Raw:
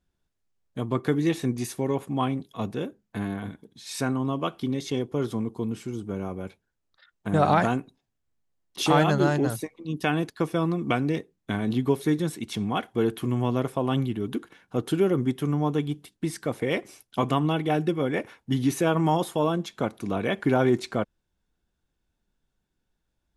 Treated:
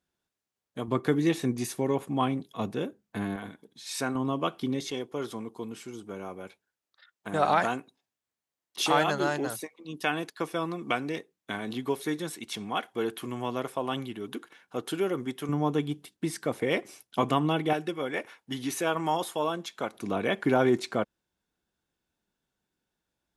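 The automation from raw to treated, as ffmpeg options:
-af "asetnsamples=n=441:p=0,asendcmd='0.88 highpass f 150;3.36 highpass f 410;4.15 highpass f 190;4.91 highpass f 650;15.49 highpass f 200;17.73 highpass f 740;19.94 highpass f 230',highpass=f=330:p=1"

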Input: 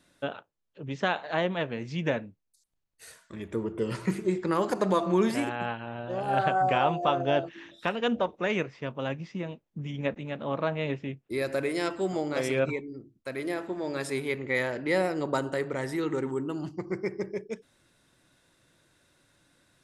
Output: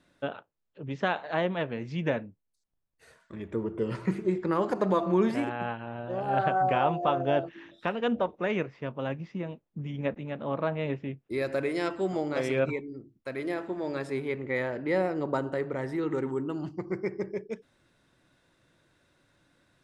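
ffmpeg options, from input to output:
-af "asetnsamples=n=441:p=0,asendcmd='2.23 lowpass f 1200;3.2 lowpass f 2000;11.18 lowpass f 3400;13.99 lowpass f 1500;16.11 lowpass f 3100',lowpass=f=2.8k:p=1"

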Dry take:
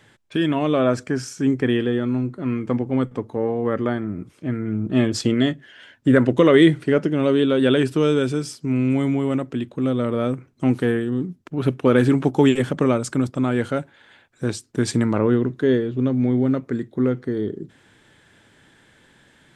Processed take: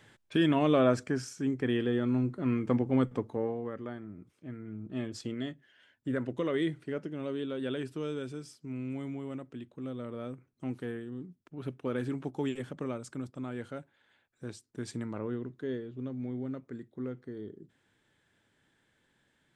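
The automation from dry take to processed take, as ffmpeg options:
-af "volume=1.5dB,afade=t=out:st=0.73:d=0.78:silence=0.446684,afade=t=in:st=1.51:d=0.74:silence=0.473151,afade=t=out:st=3.16:d=0.56:silence=0.251189"

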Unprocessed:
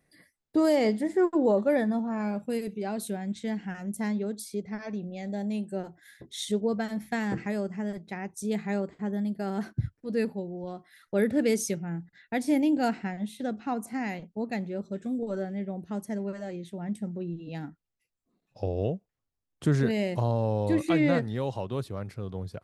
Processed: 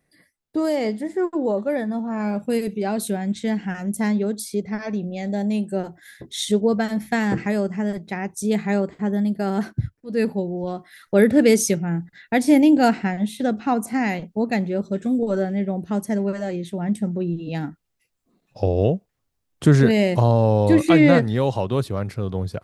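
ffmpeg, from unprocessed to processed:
-af "volume=19.5dB,afade=t=in:st=1.87:d=0.67:silence=0.421697,afade=t=out:st=9.58:d=0.48:silence=0.334965,afade=t=in:st=10.06:d=0.26:silence=0.281838"

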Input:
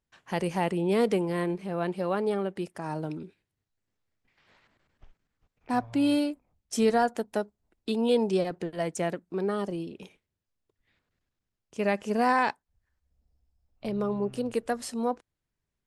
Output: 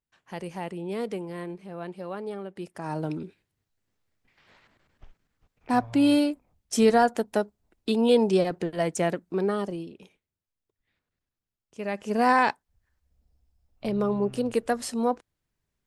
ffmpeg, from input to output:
-af "volume=13dB,afade=t=in:st=2.5:d=0.62:silence=0.281838,afade=t=out:st=9.36:d=0.66:silence=0.334965,afade=t=in:st=11.87:d=0.44:silence=0.354813"

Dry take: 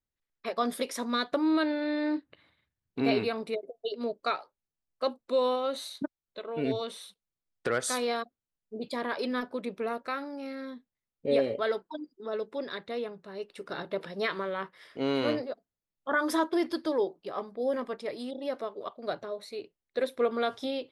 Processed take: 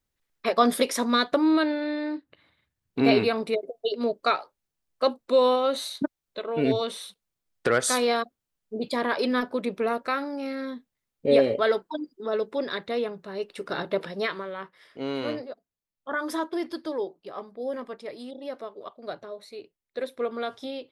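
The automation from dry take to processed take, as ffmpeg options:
-af "volume=18dB,afade=t=out:st=0.75:d=1.43:silence=0.266073,afade=t=in:st=2.18:d=0.87:silence=0.354813,afade=t=out:st=13.94:d=0.5:silence=0.375837"

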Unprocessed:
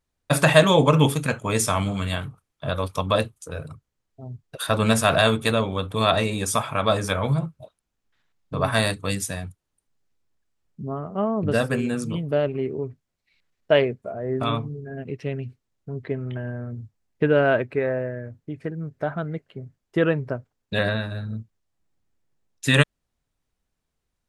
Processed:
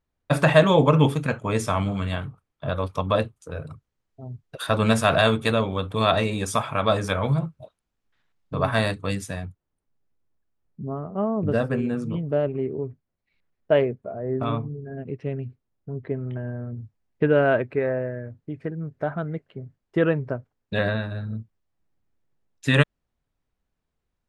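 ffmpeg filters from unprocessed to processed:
-af "asetnsamples=n=441:p=0,asendcmd='3.67 lowpass f 4300;8.66 lowpass f 2600;9.45 lowpass f 1100;16.77 lowpass f 2500',lowpass=f=2.1k:p=1"

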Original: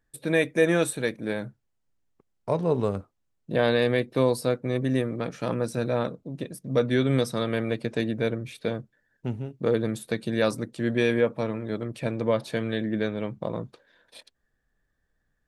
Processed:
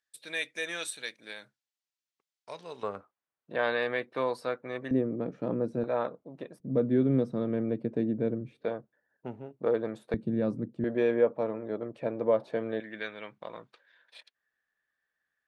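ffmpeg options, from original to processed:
-af "asetnsamples=n=441:p=0,asendcmd='2.83 bandpass f 1300;4.91 bandpass f 310;5.84 bandpass f 880;6.6 bandpass f 260;8.64 bandpass f 750;10.14 bandpass f 200;10.84 bandpass f 590;12.8 bandpass f 2100',bandpass=f=4.3k:t=q:w=0.96:csg=0"

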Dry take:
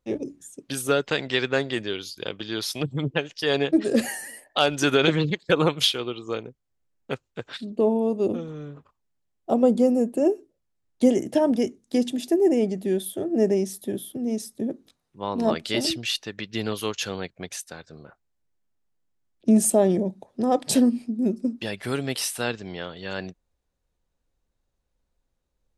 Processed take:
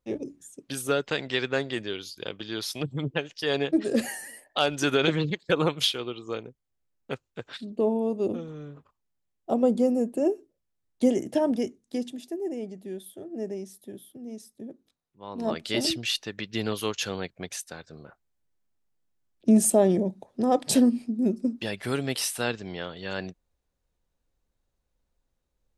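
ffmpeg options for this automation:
-af "volume=8dB,afade=t=out:st=11.47:d=0.82:silence=0.354813,afade=t=in:st=15.23:d=0.62:silence=0.266073"

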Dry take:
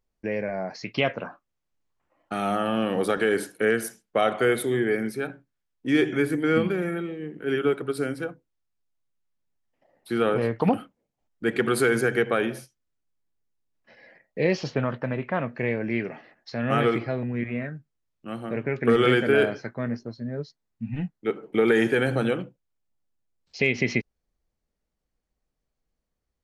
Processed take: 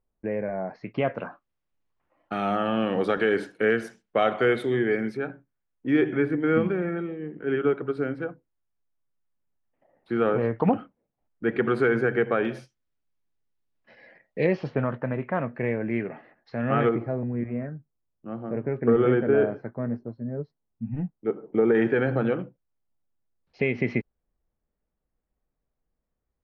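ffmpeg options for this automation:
-af "asetnsamples=n=441:p=0,asendcmd='1.15 lowpass f 3600;5.17 lowpass f 1900;12.45 lowpass f 4200;14.46 lowpass f 1900;16.89 lowpass f 1000;21.75 lowpass f 1700',lowpass=1.4k"

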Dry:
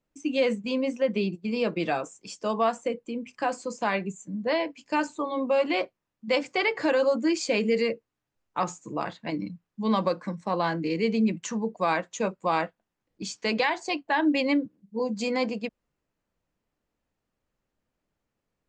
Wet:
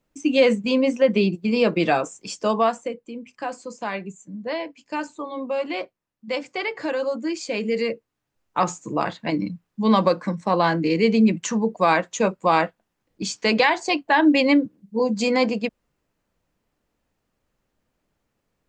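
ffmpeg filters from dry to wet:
-af "volume=16.5dB,afade=t=out:st=2.4:d=0.55:silence=0.334965,afade=t=in:st=7.49:d=1.25:silence=0.354813"

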